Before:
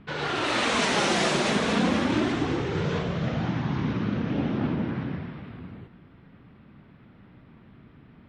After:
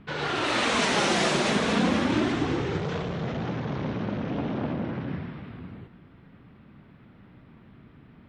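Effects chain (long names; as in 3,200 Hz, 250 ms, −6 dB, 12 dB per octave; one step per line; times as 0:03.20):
0:02.77–0:05.08: saturating transformer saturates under 590 Hz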